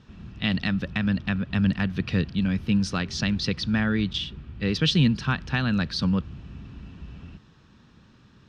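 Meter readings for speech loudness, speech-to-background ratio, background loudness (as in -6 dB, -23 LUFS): -25.5 LUFS, 17.5 dB, -43.0 LUFS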